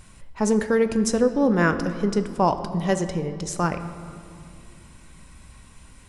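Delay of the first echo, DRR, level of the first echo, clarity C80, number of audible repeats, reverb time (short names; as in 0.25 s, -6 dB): none, 9.0 dB, none, 12.0 dB, none, 2.3 s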